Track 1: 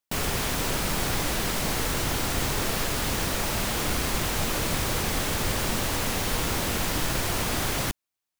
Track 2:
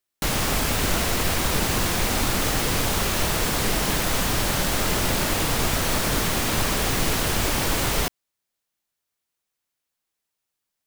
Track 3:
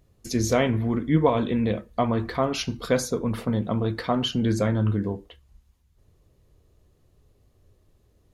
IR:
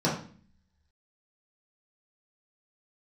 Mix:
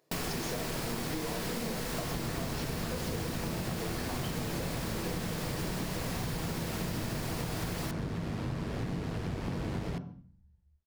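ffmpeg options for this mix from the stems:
-filter_complex "[0:a]volume=0.631,asplit=2[s0][s1];[s1]volume=0.126[s2];[1:a]highpass=86,aemphasis=mode=reproduction:type=riaa,tremolo=f=97:d=0.462,adelay=1900,volume=0.335,asplit=2[s3][s4];[s4]volume=0.0944[s5];[2:a]highpass=460,acompressor=threshold=0.0251:ratio=6,volume=0.631,asplit=2[s6][s7];[s7]volume=0.237[s8];[3:a]atrim=start_sample=2205[s9];[s2][s5][s8]amix=inputs=3:normalize=0[s10];[s10][s9]afir=irnorm=-1:irlink=0[s11];[s0][s3][s6][s11]amix=inputs=4:normalize=0,acompressor=threshold=0.0282:ratio=12"

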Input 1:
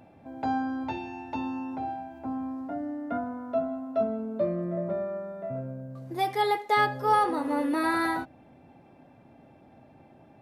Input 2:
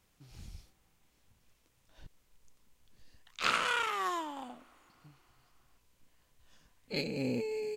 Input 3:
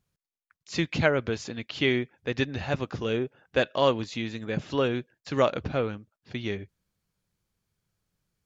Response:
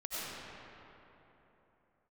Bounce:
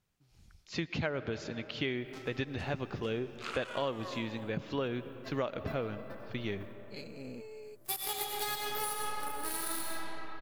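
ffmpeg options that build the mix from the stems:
-filter_complex "[0:a]aemphasis=mode=production:type=75fm,aexciter=amount=2.4:drive=6:freq=2700,aeval=exprs='0.473*(cos(1*acos(clip(val(0)/0.473,-1,1)))-cos(1*PI/2))+0.075*(cos(7*acos(clip(val(0)/0.473,-1,1)))-cos(7*PI/2))+0.00376*(cos(8*acos(clip(val(0)/0.473,-1,1)))-cos(8*PI/2))':c=same,adelay=1700,volume=0.447,asplit=2[s0][s1];[s1]volume=0.562[s2];[1:a]volume=0.266[s3];[2:a]lowpass=5100,volume=0.596,asplit=3[s4][s5][s6];[s5]volume=0.119[s7];[s6]apad=whole_len=534118[s8];[s0][s8]sidechaingate=range=0.447:threshold=0.00251:ratio=16:detection=peak[s9];[3:a]atrim=start_sample=2205[s10];[s2][s7]amix=inputs=2:normalize=0[s11];[s11][s10]afir=irnorm=-1:irlink=0[s12];[s9][s3][s4][s12]amix=inputs=4:normalize=0,acompressor=threshold=0.0282:ratio=4"

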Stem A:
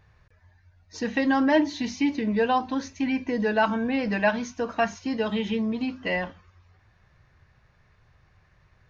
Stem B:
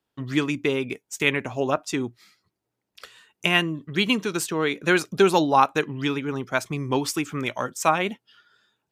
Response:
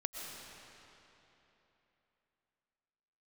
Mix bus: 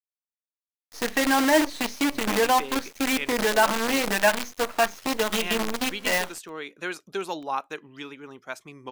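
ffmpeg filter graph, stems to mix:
-filter_complex "[0:a]acrusher=bits=5:dc=4:mix=0:aa=0.000001,volume=1.41[s0];[1:a]adelay=1950,volume=0.299[s1];[s0][s1]amix=inputs=2:normalize=0,equalizer=f=96:w=0.53:g=-13"

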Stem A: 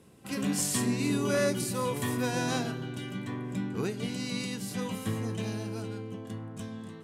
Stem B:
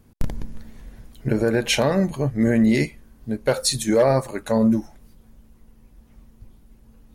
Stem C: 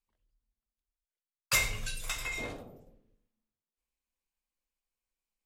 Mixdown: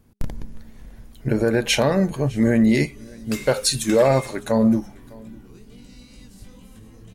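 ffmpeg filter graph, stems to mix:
-filter_complex "[0:a]acrossover=split=380|3000[s0][s1][s2];[s1]acompressor=threshold=0.00562:ratio=6[s3];[s0][s3][s2]amix=inputs=3:normalize=0,alimiter=level_in=1.33:limit=0.0631:level=0:latency=1,volume=0.75,flanger=delay=16.5:depth=7.5:speed=2.2,adelay=1700,volume=0.266[s4];[1:a]bandreject=f=204.7:t=h:w=4,bandreject=f=409.4:t=h:w=4,volume=0.75,asplit=3[s5][s6][s7];[s6]volume=0.0631[s8];[2:a]highpass=1100,acompressor=threshold=0.0178:ratio=6,adelay=1800,volume=0.891[s9];[s7]apad=whole_len=385360[s10];[s4][s10]sidechaincompress=threshold=0.0355:ratio=8:attack=16:release=177[s11];[s8]aecho=0:1:607:1[s12];[s11][s5][s9][s12]amix=inputs=4:normalize=0,dynaudnorm=f=220:g=9:m=1.5"

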